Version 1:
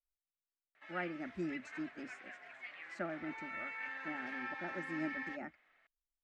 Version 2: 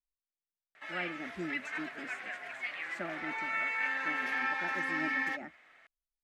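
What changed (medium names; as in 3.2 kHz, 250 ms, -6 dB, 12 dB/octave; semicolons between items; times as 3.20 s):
background +10.0 dB; master: remove distance through air 68 m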